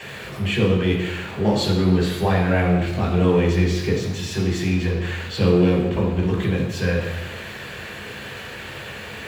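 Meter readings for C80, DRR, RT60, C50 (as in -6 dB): 6.5 dB, -5.0 dB, 1.1 s, 4.5 dB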